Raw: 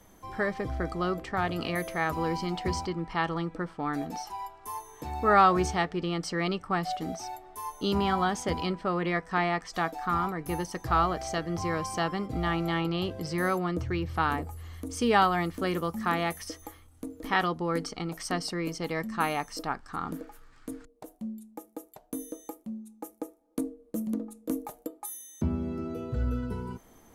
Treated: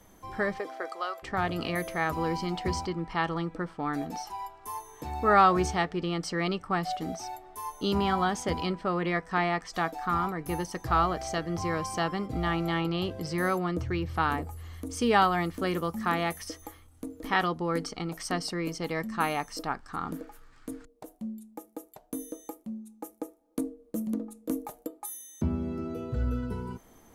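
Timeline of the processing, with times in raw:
0.58–1.22 HPF 310 Hz -> 690 Hz 24 dB/oct

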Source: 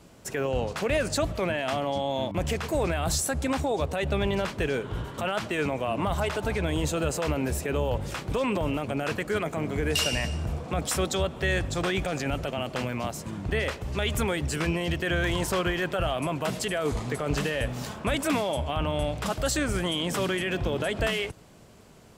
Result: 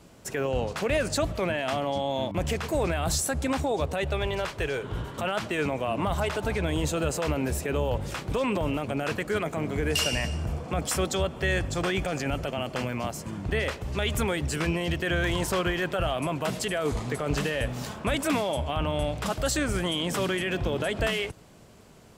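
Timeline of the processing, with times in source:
4.05–4.83 bell 220 Hz -13 dB
9.9–13.44 notch 3800 Hz

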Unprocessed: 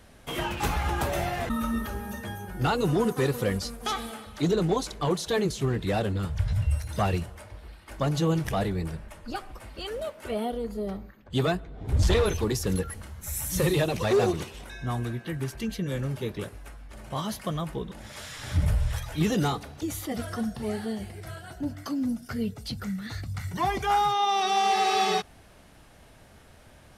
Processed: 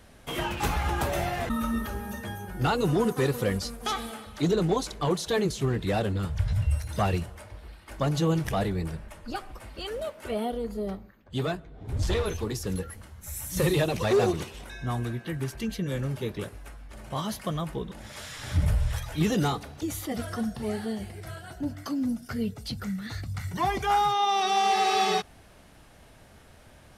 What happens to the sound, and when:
10.95–13.57 flange 1.9 Hz, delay 6.4 ms, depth 6.2 ms, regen -66%

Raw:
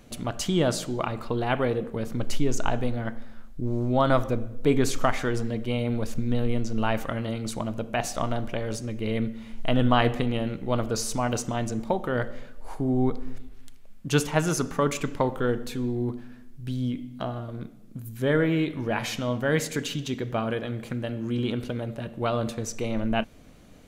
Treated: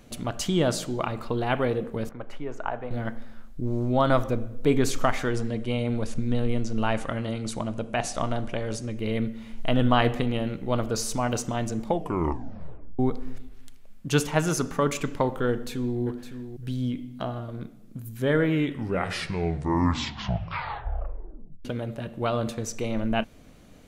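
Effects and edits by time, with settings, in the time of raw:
2.09–2.91 three-band isolator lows -13 dB, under 500 Hz, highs -23 dB, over 2100 Hz
5.31–8.98 careless resampling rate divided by 2×, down none, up filtered
11.85 tape stop 1.14 s
15.5–16 echo throw 0.56 s, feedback 10%, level -10.5 dB
18.45 tape stop 3.20 s

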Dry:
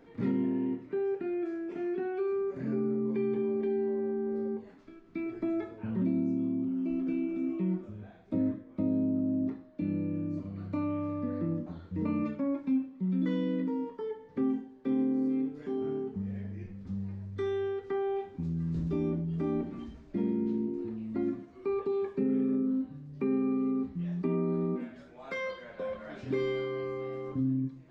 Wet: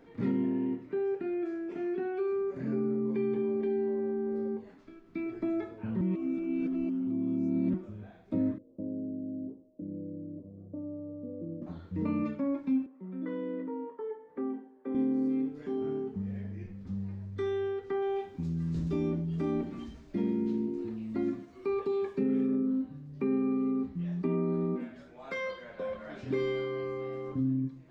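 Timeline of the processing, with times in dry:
6.01–7.74 reverse
8.58–11.62 ladder low-pass 580 Hz, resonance 55%
12.86–14.95 three-band isolator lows -21 dB, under 280 Hz, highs -21 dB, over 2000 Hz
18.02–22.47 high shelf 2900 Hz +8 dB

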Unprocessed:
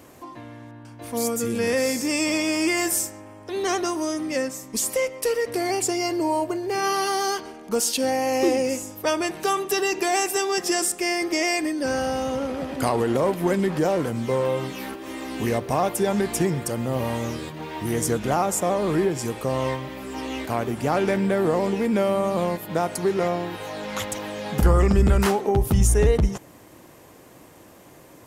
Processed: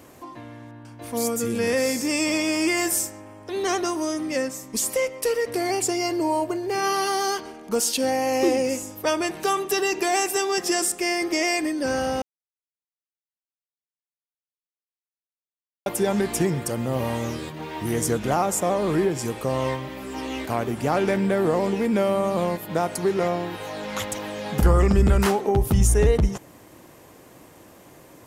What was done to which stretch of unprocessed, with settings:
12.22–15.86 mute

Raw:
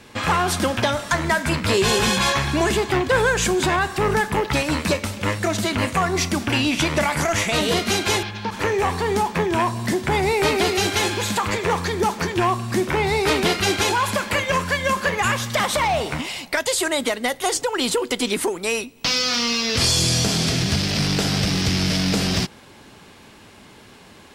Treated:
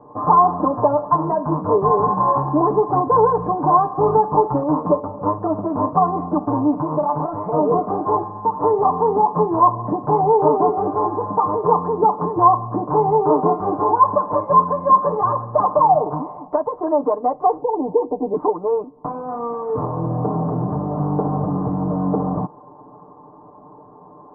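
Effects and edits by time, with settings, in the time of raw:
6.81–7.44 compressor, threshold -20 dBFS
17.61–18.34 steep low-pass 920 Hz 48 dB/oct
whole clip: Chebyshev low-pass 1100 Hz, order 6; tilt +3.5 dB/oct; comb 6.7 ms, depth 90%; gain +6.5 dB

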